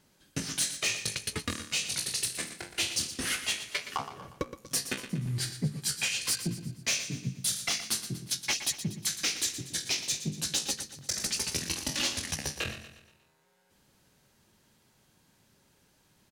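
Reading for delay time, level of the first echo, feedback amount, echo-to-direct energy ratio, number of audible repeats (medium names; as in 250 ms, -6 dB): 119 ms, -11.5 dB, 47%, -10.5 dB, 4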